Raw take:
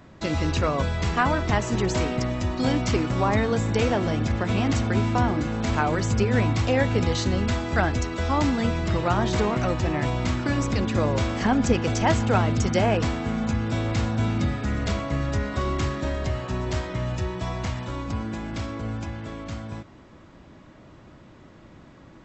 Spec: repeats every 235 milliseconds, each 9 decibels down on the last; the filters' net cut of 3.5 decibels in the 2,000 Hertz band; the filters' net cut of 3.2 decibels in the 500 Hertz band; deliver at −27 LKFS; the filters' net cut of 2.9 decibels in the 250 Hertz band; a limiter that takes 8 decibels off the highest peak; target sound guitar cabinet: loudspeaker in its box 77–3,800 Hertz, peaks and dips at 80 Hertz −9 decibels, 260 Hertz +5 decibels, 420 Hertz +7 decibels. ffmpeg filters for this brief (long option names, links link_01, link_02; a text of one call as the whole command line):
ffmpeg -i in.wav -af "equalizer=frequency=250:width_type=o:gain=-5.5,equalizer=frequency=500:width_type=o:gain=-6.5,equalizer=frequency=2000:width_type=o:gain=-4,alimiter=limit=-19dB:level=0:latency=1,highpass=77,equalizer=frequency=80:width_type=q:width=4:gain=-9,equalizer=frequency=260:width_type=q:width=4:gain=5,equalizer=frequency=420:width_type=q:width=4:gain=7,lowpass=frequency=3800:width=0.5412,lowpass=frequency=3800:width=1.3066,aecho=1:1:235|470|705|940:0.355|0.124|0.0435|0.0152,volume=2dB" out.wav